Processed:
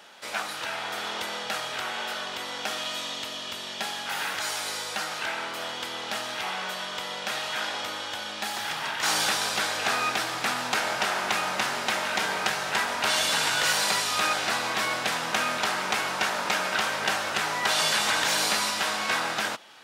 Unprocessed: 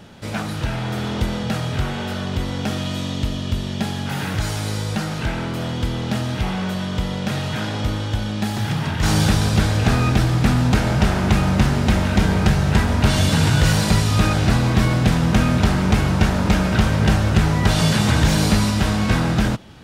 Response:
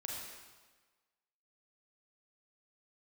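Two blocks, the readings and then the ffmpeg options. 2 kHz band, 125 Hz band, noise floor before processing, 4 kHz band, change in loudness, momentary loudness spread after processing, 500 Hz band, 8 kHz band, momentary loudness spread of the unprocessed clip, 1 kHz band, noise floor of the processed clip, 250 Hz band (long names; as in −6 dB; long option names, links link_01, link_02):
0.0 dB, −31.0 dB, −26 dBFS, 0.0 dB, −7.0 dB, 9 LU, −7.5 dB, 0.0 dB, 8 LU, −2.0 dB, −36 dBFS, −21.5 dB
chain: -af "highpass=790"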